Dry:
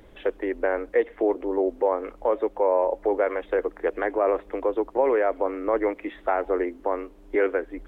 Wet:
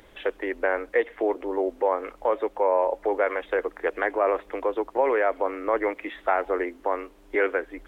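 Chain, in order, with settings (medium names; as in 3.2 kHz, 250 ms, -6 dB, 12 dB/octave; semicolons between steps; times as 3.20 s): tilt shelf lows -5.5 dB, about 660 Hz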